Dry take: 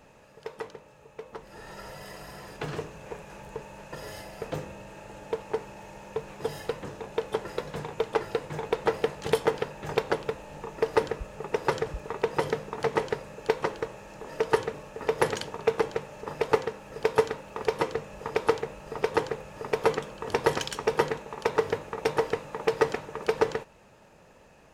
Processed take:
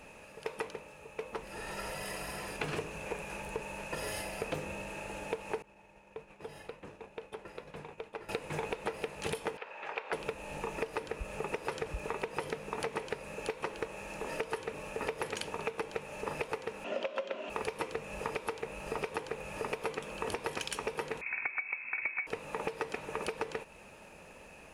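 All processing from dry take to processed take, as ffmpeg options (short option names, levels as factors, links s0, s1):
-filter_complex "[0:a]asettb=1/sr,asplit=3[s0][s1][s2];[s0]atrim=end=5.624[s3];[s1]atrim=start=5.62:end=8.29,asetpts=PTS-STARTPTS,afade=t=in:d=0.004:c=qsin,afade=t=out:st=2.666:d=0.004:c=qsin,agate=range=0.0224:threshold=0.0178:ratio=3:release=100:detection=peak,highshelf=f=5000:g=-10,acompressor=threshold=0.00355:ratio=2.5:attack=3.2:release=140:knee=1:detection=peak[s4];[s2]atrim=start=8.286[s5];[s3][s4]acrossfade=d=0.004:c1=hsin:c2=qsin[s6];[s6][s5]acrossfade=d=0.004:c1=qsin:c2=hsin,asettb=1/sr,asplit=3[s7][s8][s9];[s7]atrim=end=9.574[s10];[s8]atrim=start=9.57:end=10.13,asetpts=PTS-STARTPTS,afade=t=in:d=0.004:c=qsin,afade=t=out:st=0.556:d=0.004:c=qsin,highpass=710,lowpass=2600,acompressor=threshold=0.00631:ratio=1.5:attack=3.2:release=140:knee=1:detection=peak[s11];[s9]atrim=start=10.126[s12];[s10][s11]acrossfade=d=0.004:c1=hsin:c2=qsin[s13];[s13][s12]acrossfade=d=0.004:c1=qsin:c2=hsin,asettb=1/sr,asplit=3[s14][s15][s16];[s14]atrim=end=16.844[s17];[s15]atrim=start=16.84:end=17.5,asetpts=PTS-STARTPTS,afade=t=in:d=0.004:c=qsin,afade=t=out:st=0.656:d=0.004:c=qsin,afreqshift=95,highpass=f=190:w=0.5412,highpass=f=190:w=1.3066,equalizer=f=200:t=q:w=4:g=6,equalizer=f=400:t=q:w=4:g=10,equalizer=f=600:t=q:w=4:g=9,equalizer=f=1400:t=q:w=4:g=4,equalizer=f=3100:t=q:w=4:g=9,equalizer=f=5100:t=q:w=4:g=-3,lowpass=f=6300:w=0.5412,lowpass=f=6300:w=1.3066[s18];[s16]atrim=start=17.496[s19];[s17][s18]acrossfade=d=0.004:c1=hsin:c2=qsin[s20];[s20][s19]acrossfade=d=0.004:c1=qsin:c2=hsin,asettb=1/sr,asplit=3[s21][s22][s23];[s21]atrim=end=21.214[s24];[s22]atrim=start=21.21:end=22.27,asetpts=PTS-STARTPTS,afade=t=in:d=0.004:c=qsin,afade=t=out:st=1.056:d=0.004:c=qsin,equalizer=f=910:w=1.7:g=-5.5,lowpass=f=2300:t=q:w=0.5098,lowpass=f=2300:t=q:w=0.6013,lowpass=f=2300:t=q:w=0.9,lowpass=f=2300:t=q:w=2.563,afreqshift=-2700[s25];[s23]atrim=start=22.266[s26];[s24][s25]acrossfade=d=0.004:c1=hsin:c2=qsin[s27];[s27][s26]acrossfade=d=0.004:c1=qsin:c2=hsin,equalizer=f=125:t=o:w=0.33:g=-9,equalizer=f=2500:t=o:w=0.33:g=9,equalizer=f=10000:t=o:w=0.33:g=11,alimiter=limit=0.119:level=0:latency=1:release=373,acompressor=threshold=0.02:ratio=6,volume=1.26"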